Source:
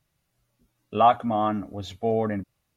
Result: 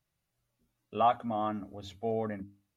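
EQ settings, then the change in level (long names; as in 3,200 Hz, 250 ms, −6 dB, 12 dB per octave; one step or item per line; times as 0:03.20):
mains-hum notches 50/100/150/200/250/300 Hz
−8.0 dB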